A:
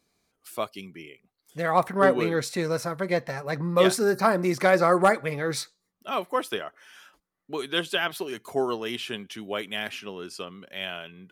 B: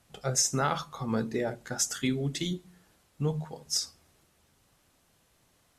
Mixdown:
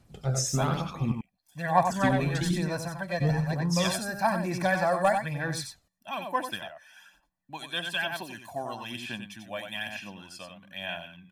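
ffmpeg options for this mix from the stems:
-filter_complex "[0:a]aecho=1:1:1.2:0.96,volume=-8dB,asplit=2[a][b];[b]volume=-6.5dB[c];[1:a]lowshelf=f=440:g=11,volume=-6dB,asplit=3[d][e][f];[d]atrim=end=1.12,asetpts=PTS-STARTPTS,afade=t=out:st=1.116:d=0.004:c=hsin[g];[e]atrim=start=1.12:end=1.85,asetpts=PTS-STARTPTS,volume=0[h];[f]atrim=start=1.85,asetpts=PTS-STARTPTS,afade=t=in:d=0.004:c=hsin[i];[g][h][i]concat=n=3:v=0:a=1,asplit=2[j][k];[k]volume=-4.5dB[l];[c][l]amix=inputs=2:normalize=0,aecho=0:1:92:1[m];[a][j][m]amix=inputs=3:normalize=0,aphaser=in_gain=1:out_gain=1:delay=1.7:decay=0.41:speed=1.1:type=sinusoidal"

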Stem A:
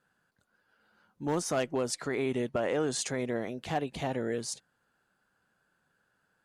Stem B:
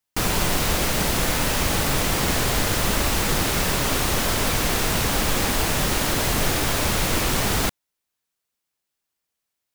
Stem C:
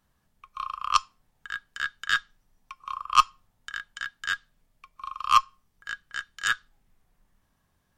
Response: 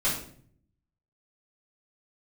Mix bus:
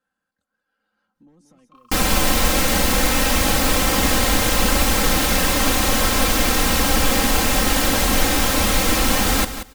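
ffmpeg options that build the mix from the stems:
-filter_complex "[0:a]acrossover=split=210[a][b];[b]acompressor=threshold=-45dB:ratio=8[c];[a][c]amix=inputs=2:normalize=0,volume=-8dB,asplit=2[d][e];[e]volume=-14.5dB[f];[1:a]adelay=1750,volume=2dB,asplit=2[g][h];[h]volume=-11.5dB[i];[2:a]adelay=1150,volume=-14dB[j];[d][j]amix=inputs=2:normalize=0,acompressor=threshold=-56dB:ratio=2,volume=0dB[k];[f][i]amix=inputs=2:normalize=0,aecho=0:1:182|364|546:1|0.15|0.0225[l];[g][k][l]amix=inputs=3:normalize=0,aecho=1:1:3.8:0.71"

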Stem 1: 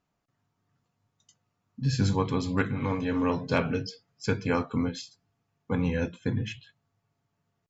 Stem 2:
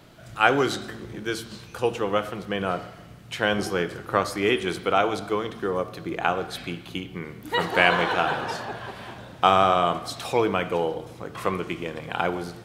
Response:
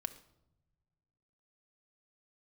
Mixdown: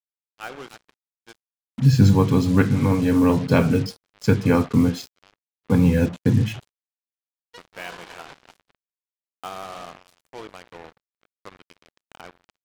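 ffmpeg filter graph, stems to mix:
-filter_complex "[0:a]lowshelf=f=400:g=10,volume=3dB,asplit=3[a][b][c];[b]volume=-22.5dB[d];[1:a]volume=-17dB,asplit=2[e][f];[f]volume=-11.5dB[g];[c]apad=whole_len=557721[h];[e][h]sidechaincompress=threshold=-34dB:ratio=8:attack=36:release=987[i];[2:a]atrim=start_sample=2205[j];[d][j]afir=irnorm=-1:irlink=0[k];[g]aecho=0:1:293:1[l];[a][i][k][l]amix=inputs=4:normalize=0,highpass=81,acrusher=bits=5:mix=0:aa=0.5"

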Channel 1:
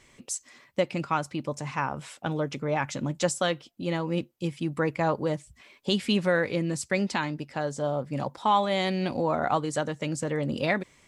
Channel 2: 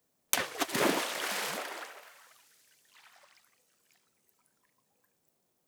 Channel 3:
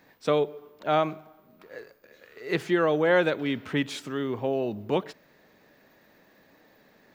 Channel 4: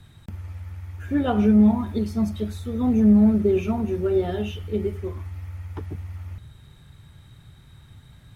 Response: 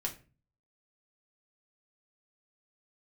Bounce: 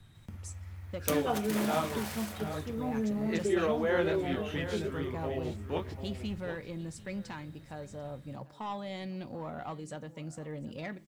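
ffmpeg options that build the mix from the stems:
-filter_complex "[0:a]lowshelf=f=190:g=9,asoftclip=type=tanh:threshold=-16.5dB,acrusher=bits=9:mix=0:aa=0.000001,adelay=150,volume=-16.5dB,asplit=3[a][b][c];[b]volume=-10.5dB[d];[c]volume=-17dB[e];[1:a]highshelf=f=11k:g=10,adelay=750,volume=-13dB,asplit=2[f][g];[g]volume=-5dB[h];[2:a]flanger=delay=19.5:depth=5:speed=2.9,adelay=800,volume=-5.5dB,asplit=2[i][j];[j]volume=-11dB[k];[3:a]acrossover=split=350|3000[l][m][n];[l]acompressor=threshold=-31dB:ratio=6[o];[o][m][n]amix=inputs=3:normalize=0,volume=-9.5dB,asplit=2[p][q];[q]volume=-9dB[r];[4:a]atrim=start_sample=2205[s];[d][h][r]amix=inputs=3:normalize=0[t];[t][s]afir=irnorm=-1:irlink=0[u];[e][k]amix=inputs=2:normalize=0,aecho=0:1:743:1[v];[a][f][i][p][u][v]amix=inputs=6:normalize=0"

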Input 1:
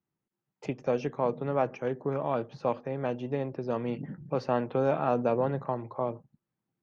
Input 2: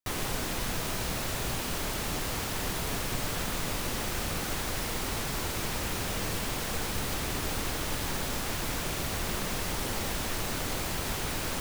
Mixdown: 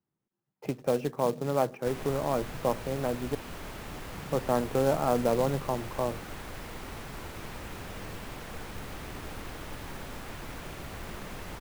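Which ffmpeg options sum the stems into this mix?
-filter_complex "[0:a]highshelf=f=3.1k:g=-11.5,volume=1dB,asplit=3[a][b][c];[a]atrim=end=3.35,asetpts=PTS-STARTPTS,afade=t=out:st=3.346:d=0.004:c=hsin[d];[b]atrim=start=3.35:end=4.14,asetpts=PTS-STARTPTS,volume=0[e];[c]atrim=start=4.14,asetpts=PTS-STARTPTS,afade=t=in:d=0.004:c=hsin[f];[d][e][f]concat=n=3:v=0:a=1[g];[1:a]adelay=1800,volume=-7dB[h];[g][h]amix=inputs=2:normalize=0,acrossover=split=2900[i][j];[j]acompressor=threshold=-51dB:ratio=4:attack=1:release=60[k];[i][k]amix=inputs=2:normalize=0,acrusher=bits=4:mode=log:mix=0:aa=0.000001"

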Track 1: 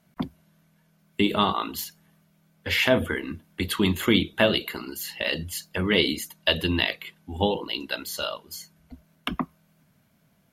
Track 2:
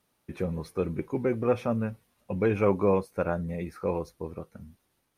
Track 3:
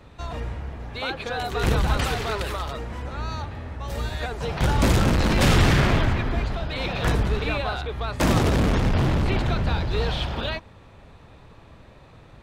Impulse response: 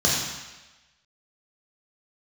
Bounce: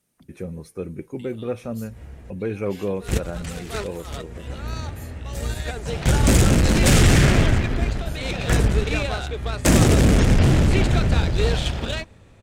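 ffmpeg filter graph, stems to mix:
-filter_complex "[0:a]acrossover=split=150|3000[a][b][c];[b]acompressor=threshold=-43dB:ratio=2.5[d];[a][d][c]amix=inputs=3:normalize=0,volume=-17dB[e];[1:a]volume=-1dB,asplit=2[f][g];[2:a]dynaudnorm=f=210:g=17:m=9.5dB,aeval=exprs='0.841*(cos(1*acos(clip(val(0)/0.841,-1,1)))-cos(1*PI/2))+0.0473*(cos(5*acos(clip(val(0)/0.841,-1,1)))-cos(5*PI/2))+0.0841*(cos(7*acos(clip(val(0)/0.841,-1,1)))-cos(7*PI/2))':c=same,adelay=1450,volume=-2dB[h];[g]apad=whole_len=611810[i];[h][i]sidechaincompress=threshold=-46dB:ratio=6:attack=50:release=107[j];[e][f][j]amix=inputs=3:normalize=0,equalizer=f=1k:t=o:w=1:g=-8,equalizer=f=4k:t=o:w=1:g=-4,equalizer=f=8k:t=o:w=1:g=8,asoftclip=type=tanh:threshold=-5dB"

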